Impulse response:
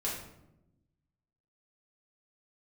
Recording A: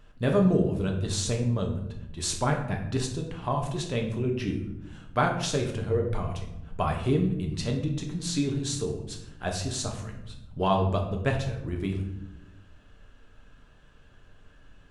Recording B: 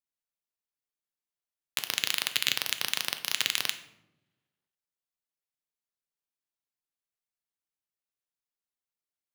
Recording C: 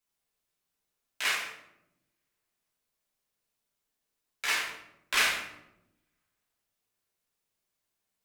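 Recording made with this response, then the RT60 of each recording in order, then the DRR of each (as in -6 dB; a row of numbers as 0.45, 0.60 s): C; 0.90, 0.90, 0.90 s; 1.5, 8.0, -6.0 dB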